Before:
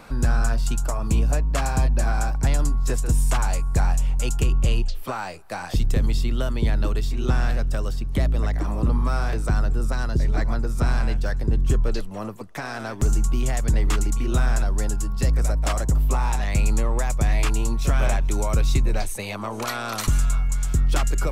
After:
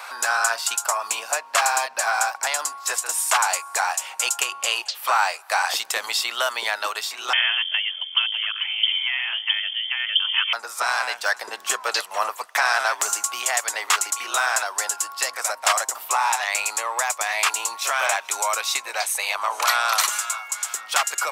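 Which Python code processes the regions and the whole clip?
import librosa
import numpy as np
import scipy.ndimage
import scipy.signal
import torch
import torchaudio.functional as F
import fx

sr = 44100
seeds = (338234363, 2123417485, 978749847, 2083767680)

y = fx.chain(x, sr, fx.highpass(hz=120.0, slope=24),
    fx.freq_invert(carrier_hz=3300), at=(7.33, 10.53))
y = scipy.signal.sosfilt(scipy.signal.butter(4, 790.0, 'highpass', fs=sr, output='sos'), y)
y = fx.rider(y, sr, range_db=10, speed_s=2.0)
y = F.gain(torch.from_numpy(y), 9.0).numpy()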